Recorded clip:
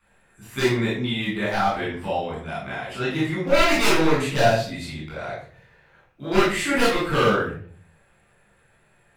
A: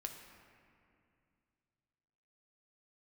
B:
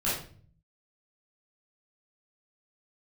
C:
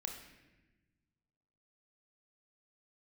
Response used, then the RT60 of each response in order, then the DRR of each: B; 2.4, 0.45, 1.1 s; 3.0, -9.5, 2.5 dB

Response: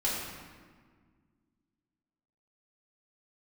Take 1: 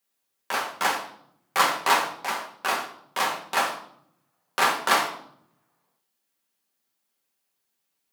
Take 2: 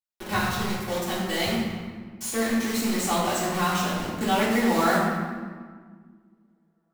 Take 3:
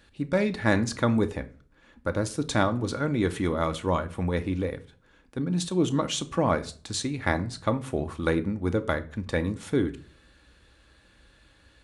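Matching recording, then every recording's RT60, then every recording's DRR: 2; 0.70, 1.7, 0.45 s; -1.5, -8.5, 8.0 dB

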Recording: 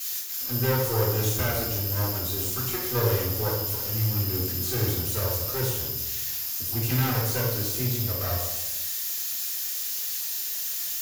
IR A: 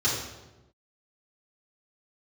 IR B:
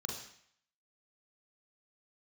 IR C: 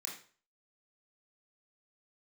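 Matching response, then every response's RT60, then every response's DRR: A; 1.1, 0.65, 0.40 s; -10.0, -0.5, -3.5 dB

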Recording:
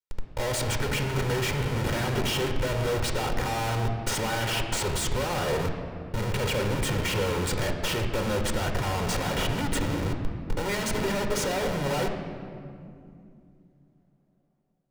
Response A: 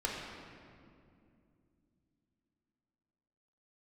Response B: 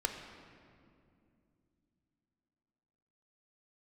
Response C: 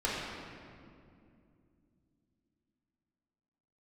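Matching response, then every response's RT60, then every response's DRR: B; 2.5, 2.5, 2.5 s; -3.0, 4.5, -7.0 dB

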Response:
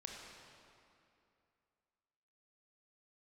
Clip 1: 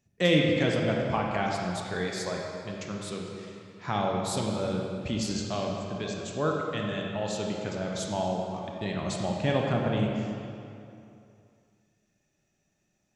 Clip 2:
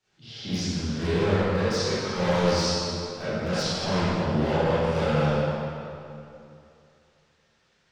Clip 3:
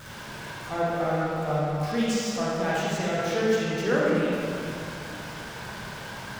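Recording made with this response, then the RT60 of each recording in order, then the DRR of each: 1; 2.6, 2.6, 2.6 s; -1.0, -15.0, -7.5 dB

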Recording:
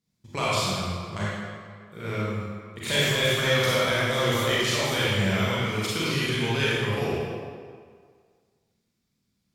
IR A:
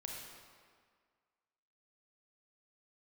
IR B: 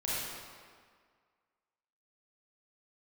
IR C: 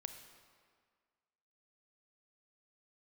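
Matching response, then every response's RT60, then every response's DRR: B; 1.8, 1.8, 1.8 s; -1.0, -8.5, 7.0 dB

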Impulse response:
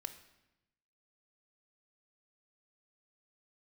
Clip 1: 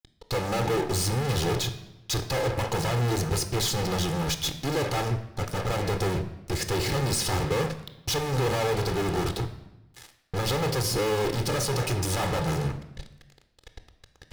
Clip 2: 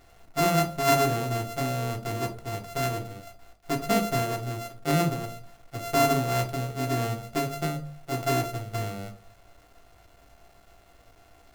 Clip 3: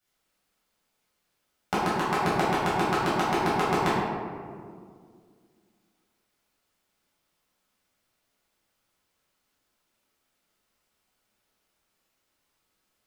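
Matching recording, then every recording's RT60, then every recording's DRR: 1; 0.95, 0.45, 2.1 s; 9.0, 3.0, -10.5 dB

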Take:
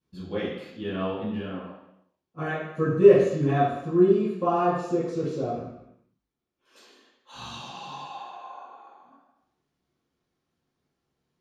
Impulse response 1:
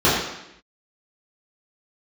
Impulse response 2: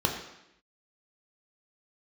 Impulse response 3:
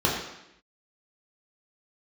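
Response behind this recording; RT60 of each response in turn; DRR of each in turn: 1; 0.80, 0.80, 0.80 s; -11.5, 0.5, -4.5 dB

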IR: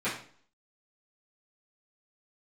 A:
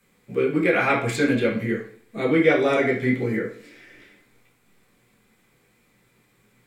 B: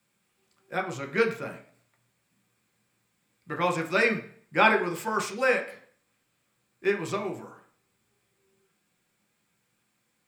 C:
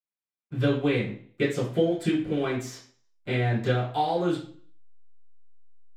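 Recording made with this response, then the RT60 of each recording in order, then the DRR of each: C; 0.50, 0.50, 0.50 s; -6.0, 2.0, -13.5 dB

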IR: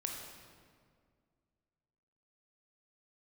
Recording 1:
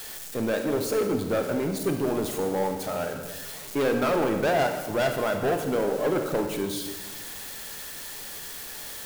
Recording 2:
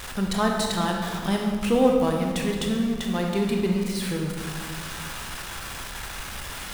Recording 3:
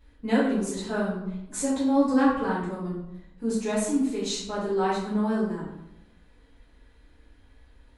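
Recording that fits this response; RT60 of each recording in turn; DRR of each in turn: 2; 1.3, 2.0, 0.90 s; 5.0, 0.5, -10.0 dB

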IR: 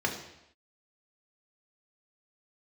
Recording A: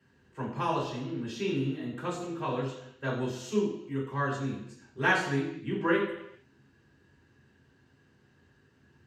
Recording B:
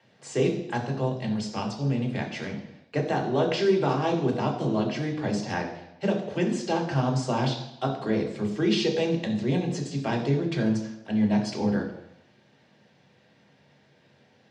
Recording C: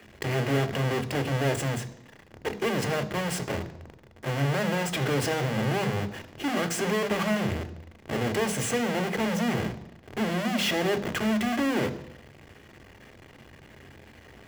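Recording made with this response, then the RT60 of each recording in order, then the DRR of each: B; not exponential, not exponential, not exponential; -7.5, 0.5, 9.5 dB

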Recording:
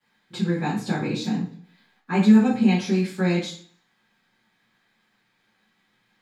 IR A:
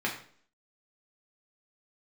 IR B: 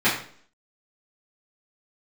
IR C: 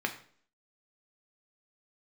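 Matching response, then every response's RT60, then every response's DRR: B; 0.50, 0.50, 0.50 s; -2.5, -12.5, 4.0 dB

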